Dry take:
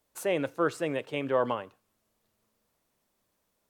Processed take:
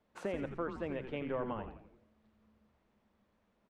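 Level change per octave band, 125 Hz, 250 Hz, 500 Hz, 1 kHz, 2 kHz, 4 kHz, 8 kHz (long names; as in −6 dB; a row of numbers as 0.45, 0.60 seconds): −4.5 dB, −6.5 dB, −9.5 dB, −10.0 dB, −10.5 dB, −13.5 dB, can't be measured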